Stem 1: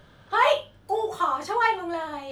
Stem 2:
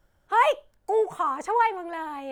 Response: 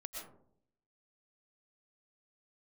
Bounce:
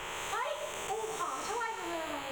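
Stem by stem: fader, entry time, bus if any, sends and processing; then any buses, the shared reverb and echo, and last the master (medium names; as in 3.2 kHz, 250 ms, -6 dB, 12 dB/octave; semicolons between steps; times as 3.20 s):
-7.5 dB, 0.00 s, send -4 dB, none
-2.5 dB, 0.00 s, no send, spectral blur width 542 ms; rippled EQ curve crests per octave 0.73, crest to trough 10 dB; spectrum-flattening compressor 4:1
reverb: on, RT60 0.65 s, pre-delay 80 ms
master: compression 6:1, threshold -33 dBFS, peak gain reduction 12.5 dB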